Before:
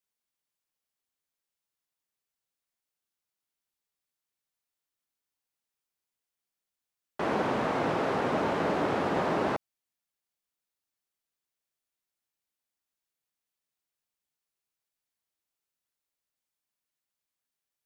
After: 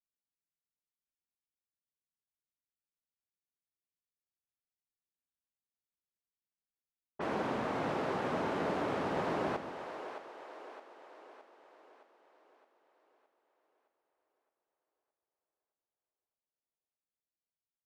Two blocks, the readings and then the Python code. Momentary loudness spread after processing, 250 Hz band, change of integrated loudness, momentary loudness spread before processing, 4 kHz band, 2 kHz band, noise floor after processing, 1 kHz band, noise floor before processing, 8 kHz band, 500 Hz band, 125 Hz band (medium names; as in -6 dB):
19 LU, -6.0 dB, -6.5 dB, 5 LU, -6.0 dB, -6.0 dB, under -85 dBFS, -6.0 dB, under -85 dBFS, -6.0 dB, -6.0 dB, -6.0 dB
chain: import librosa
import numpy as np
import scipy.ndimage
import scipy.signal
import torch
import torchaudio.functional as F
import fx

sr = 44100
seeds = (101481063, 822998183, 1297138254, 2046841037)

y = fx.env_lowpass(x, sr, base_hz=310.0, full_db=-29.5)
y = fx.wow_flutter(y, sr, seeds[0], rate_hz=2.1, depth_cents=23.0)
y = fx.echo_split(y, sr, split_hz=360.0, low_ms=148, high_ms=616, feedback_pct=52, wet_db=-9)
y = F.gain(torch.from_numpy(y), -6.5).numpy()